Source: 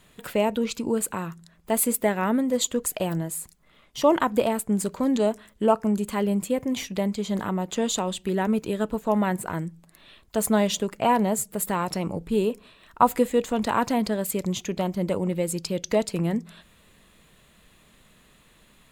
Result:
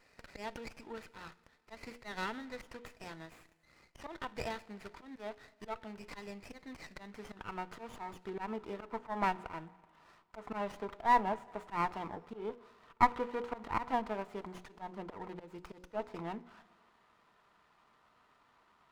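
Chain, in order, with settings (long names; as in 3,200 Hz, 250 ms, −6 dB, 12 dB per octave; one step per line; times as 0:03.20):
mains-hum notches 60/120/180/240/300/360/420/480/540 Hz
treble cut that deepens with the level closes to 2,700 Hz, closed at −18.5 dBFS
high-shelf EQ 7,600 Hz −3 dB
band-pass filter sweep 2,300 Hz → 1,100 Hz, 0:06.40–0:08.08
volume swells 148 ms
notch comb filter 550 Hz
four-comb reverb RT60 1.8 s, DRR 19.5 dB
windowed peak hold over 9 samples
level +3 dB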